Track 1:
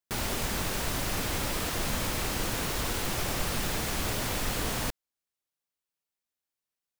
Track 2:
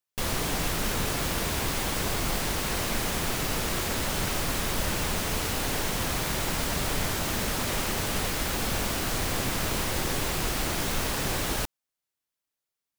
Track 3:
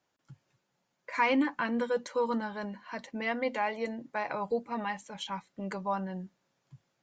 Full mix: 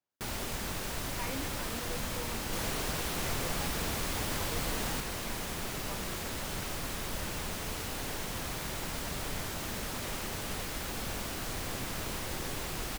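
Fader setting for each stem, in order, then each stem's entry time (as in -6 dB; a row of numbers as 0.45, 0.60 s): -5.5, -8.5, -15.5 dB; 0.10, 2.35, 0.00 s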